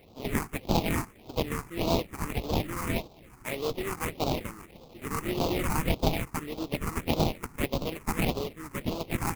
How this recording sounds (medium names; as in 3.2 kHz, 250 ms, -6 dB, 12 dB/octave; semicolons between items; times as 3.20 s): aliases and images of a low sample rate 1.6 kHz, jitter 20%; phasing stages 4, 1.7 Hz, lowest notch 560–1900 Hz